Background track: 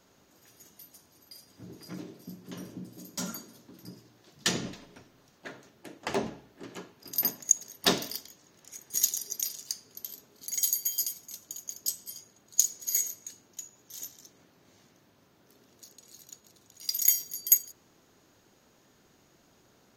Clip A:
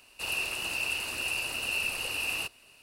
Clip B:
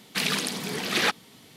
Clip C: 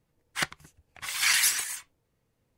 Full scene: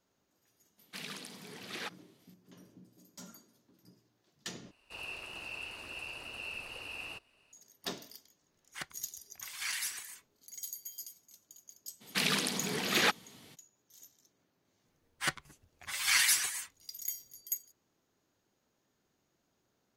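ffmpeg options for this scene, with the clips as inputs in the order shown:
-filter_complex "[2:a]asplit=2[a][b];[3:a]asplit=2[c][d];[0:a]volume=-15dB[e];[1:a]lowpass=f=2.5k:p=1[f];[d]asplit=2[g][h];[h]adelay=7.9,afreqshift=-1.1[i];[g][i]amix=inputs=2:normalize=1[j];[e]asplit=2[k][l];[k]atrim=end=4.714[m];[f]atrim=end=2.82,asetpts=PTS-STARTPTS,volume=-8dB[n];[l]atrim=start=7.526[o];[a]atrim=end=1.56,asetpts=PTS-STARTPTS,volume=-17.5dB,afade=t=in:d=0.004:c=hsin,afade=t=out:st=1.556:d=0.004:c=hsin,adelay=780[p];[c]atrim=end=2.57,asetpts=PTS-STARTPTS,volume=-13.5dB,afade=t=in:d=0.004:c=hsin,afade=t=out:st=2.566:d=0.004:c=hsin,adelay=8390[q];[b]atrim=end=1.56,asetpts=PTS-STARTPTS,volume=-4dB,afade=t=in:d=0.02,afade=t=out:st=1.54:d=0.02,adelay=12000[r];[j]atrim=end=2.57,asetpts=PTS-STARTPTS,volume=-0.5dB,afade=t=in:d=0.004:c=hsin,afade=t=out:st=2.566:d=0.004:c=hsin,adelay=14850[s];[m][n]acrossfade=d=0.004:c1=hsin:c2=hsin[t];[t][o]acrossfade=d=0.004:c1=hsin:c2=hsin[u];[u][p][q][r][s]amix=inputs=5:normalize=0"

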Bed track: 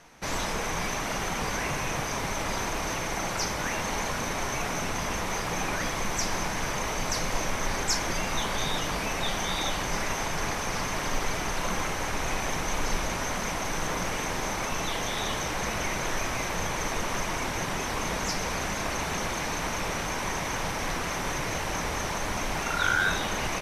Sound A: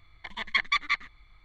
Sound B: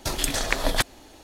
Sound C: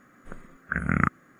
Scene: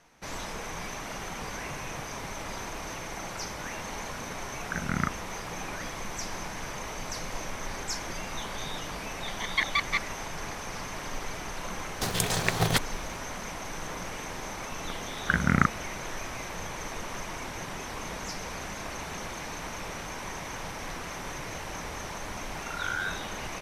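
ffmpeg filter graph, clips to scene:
-filter_complex "[3:a]asplit=2[a][b];[0:a]volume=-7dB[c];[2:a]aeval=exprs='val(0)*sgn(sin(2*PI*140*n/s))':c=same[d];[b]dynaudnorm=f=230:g=3:m=6.5dB[e];[a]atrim=end=1.39,asetpts=PTS-STARTPTS,volume=-6dB,afade=t=in:d=0.004:c=hsin,afade=t=out:st=1.386:d=0.004:c=hsin,adelay=4000[f];[1:a]atrim=end=1.44,asetpts=PTS-STARTPTS,volume=-1.5dB,afade=t=in:d=0.004:c=hsin,afade=t=out:st=1.436:d=0.004:c=hsin,adelay=9030[g];[d]atrim=end=1.23,asetpts=PTS-STARTPTS,volume=-3dB,afade=t=in:d=0.004:c=hsin,afade=t=out:st=1.226:d=0.004:c=hsin,adelay=11960[h];[e]atrim=end=1.39,asetpts=PTS-STARTPTS,volume=-1.5dB,afade=t=in:d=0.004:c=hsin,afade=t=out:st=1.386:d=0.004:c=hsin,adelay=14580[i];[c][f][g][h][i]amix=inputs=5:normalize=0"

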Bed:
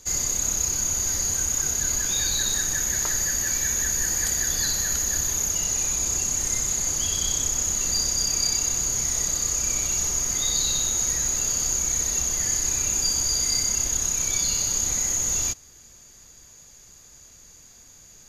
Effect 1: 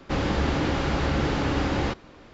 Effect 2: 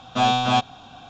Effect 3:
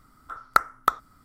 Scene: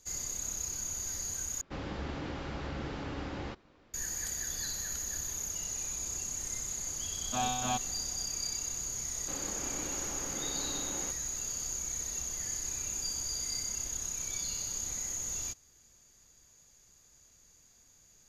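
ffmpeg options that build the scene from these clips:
-filter_complex "[1:a]asplit=2[a][b];[0:a]volume=-12.5dB[c];[b]highpass=210[d];[c]asplit=2[e][f];[e]atrim=end=1.614[g];[a]atrim=end=2.33,asetpts=PTS-STARTPTS,volume=-14dB[h];[f]atrim=start=3.936[i];[2:a]atrim=end=1.09,asetpts=PTS-STARTPTS,volume=-14dB,afade=t=in:d=0.004:c=hsin,afade=t=out:st=1.086:d=0.004:c=hsin,adelay=7170[j];[d]atrim=end=2.33,asetpts=PTS-STARTPTS,volume=-16.5dB,afade=t=in:d=0.004:c=hsin,afade=t=out:st=2.326:d=0.004:c=hsin,adelay=9180[k];[g][h]acrossfade=d=0.004:c1=hsin:c2=hsin[l];[l][i]acrossfade=d=0.004:c1=hsin:c2=hsin[m];[m][j][k]amix=inputs=3:normalize=0"

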